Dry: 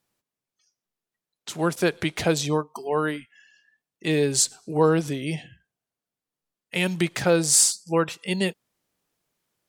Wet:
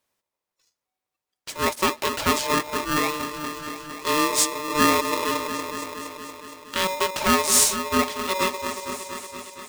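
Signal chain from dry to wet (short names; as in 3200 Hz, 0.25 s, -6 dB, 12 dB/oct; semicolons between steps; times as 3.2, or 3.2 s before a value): notch 780 Hz, Q 14; repeats that get brighter 0.233 s, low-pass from 400 Hz, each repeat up 1 oct, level -6 dB; polarity switched at an audio rate 750 Hz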